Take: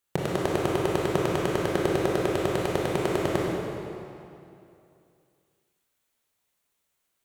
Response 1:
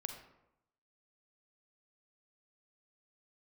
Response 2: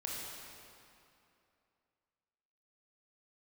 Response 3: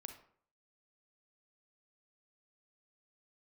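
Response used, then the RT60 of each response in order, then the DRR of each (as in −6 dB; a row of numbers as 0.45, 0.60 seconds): 2; 0.85, 2.7, 0.55 seconds; 5.0, −4.0, 6.0 decibels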